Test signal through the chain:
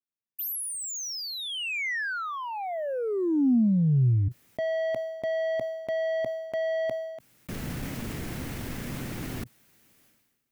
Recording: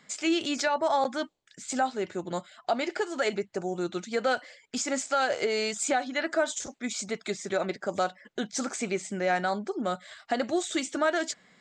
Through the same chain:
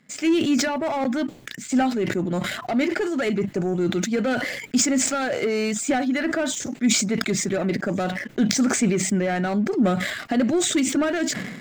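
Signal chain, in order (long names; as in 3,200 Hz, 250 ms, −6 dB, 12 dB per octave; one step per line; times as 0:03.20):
leveller curve on the samples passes 2
graphic EQ with 10 bands 125 Hz +9 dB, 250 Hz +9 dB, 1,000 Hz −4 dB, 2,000 Hz +3 dB, 4,000 Hz −4 dB, 8,000 Hz −3 dB
level that may fall only so fast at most 45 dB per second
level −3.5 dB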